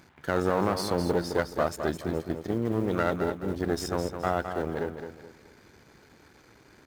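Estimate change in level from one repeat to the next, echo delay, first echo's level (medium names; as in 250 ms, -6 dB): -9.5 dB, 212 ms, -8.0 dB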